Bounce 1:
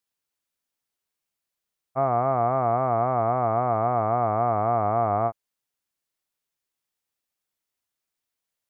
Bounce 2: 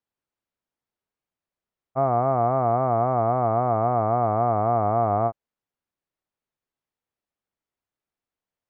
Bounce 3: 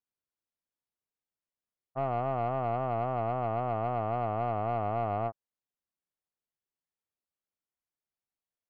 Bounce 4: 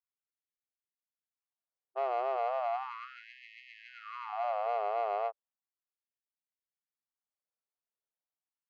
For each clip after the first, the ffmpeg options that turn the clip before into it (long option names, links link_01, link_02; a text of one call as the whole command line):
ffmpeg -i in.wav -af "lowpass=frequency=1000:poles=1,volume=3dB" out.wav
ffmpeg -i in.wav -af "aeval=exprs='(tanh(5.62*val(0)+0.45)-tanh(0.45))/5.62':channel_layout=same,volume=-7.5dB" out.wav
ffmpeg -i in.wav -af "adynamicsmooth=sensitivity=3.5:basefreq=1600,afftfilt=real='re*gte(b*sr/1024,350*pow(1800/350,0.5+0.5*sin(2*PI*0.35*pts/sr)))':imag='im*gte(b*sr/1024,350*pow(1800/350,0.5+0.5*sin(2*PI*0.35*pts/sr)))':win_size=1024:overlap=0.75" out.wav